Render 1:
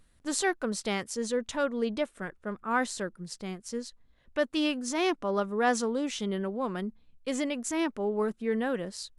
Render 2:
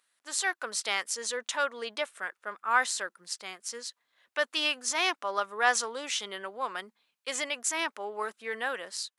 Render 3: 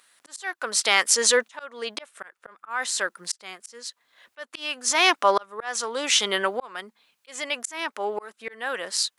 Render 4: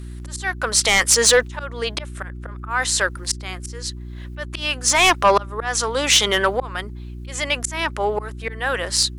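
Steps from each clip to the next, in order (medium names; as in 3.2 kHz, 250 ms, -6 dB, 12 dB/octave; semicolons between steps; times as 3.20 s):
high-pass 990 Hz 12 dB/octave; level rider gain up to 7.5 dB; trim -1.5 dB
in parallel at +1 dB: peak limiter -19 dBFS, peak gain reduction 8.5 dB; on the sum: slow attack 741 ms; trim +8 dB
sine folder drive 7 dB, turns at -3 dBFS; mains buzz 60 Hz, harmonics 6, -29 dBFS -7 dB/octave; trim -4 dB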